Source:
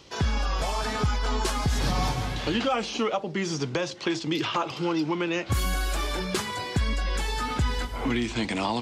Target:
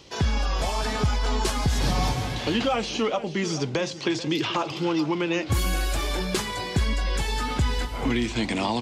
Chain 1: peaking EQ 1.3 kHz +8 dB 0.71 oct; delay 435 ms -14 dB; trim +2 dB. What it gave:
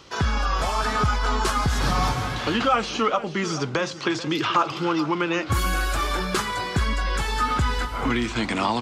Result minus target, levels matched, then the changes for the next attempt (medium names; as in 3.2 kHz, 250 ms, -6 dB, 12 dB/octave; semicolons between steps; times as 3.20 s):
1 kHz band +4.0 dB
change: peaking EQ 1.3 kHz -3.5 dB 0.71 oct